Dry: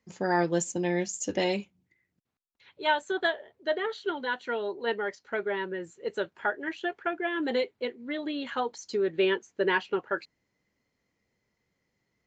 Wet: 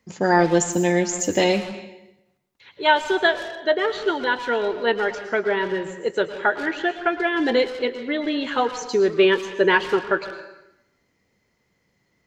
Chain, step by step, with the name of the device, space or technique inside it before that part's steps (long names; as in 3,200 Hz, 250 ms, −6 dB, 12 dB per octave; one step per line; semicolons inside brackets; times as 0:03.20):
saturated reverb return (on a send at −6 dB: convolution reverb RT60 0.85 s, pre-delay 104 ms + soft clipping −31.5 dBFS, distortion −8 dB)
on the sum: level +8.5 dB